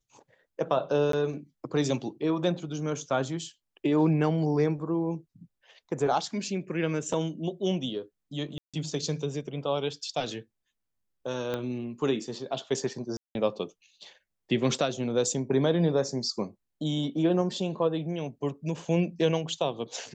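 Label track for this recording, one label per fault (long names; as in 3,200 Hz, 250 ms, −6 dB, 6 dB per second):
1.120000	1.130000	drop-out 13 ms
8.580000	8.740000	drop-out 156 ms
11.540000	11.540000	click −18 dBFS
13.170000	13.350000	drop-out 181 ms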